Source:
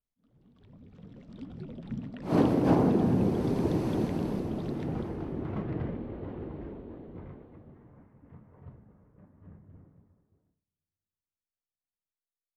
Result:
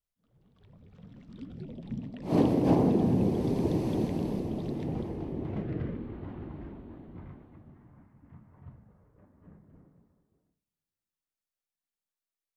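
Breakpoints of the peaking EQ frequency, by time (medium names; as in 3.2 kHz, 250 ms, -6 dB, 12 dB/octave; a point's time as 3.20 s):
peaking EQ -10 dB 0.63 oct
0.90 s 260 Hz
1.73 s 1.4 kHz
5.45 s 1.4 kHz
6.26 s 470 Hz
8.69 s 470 Hz
9.50 s 94 Hz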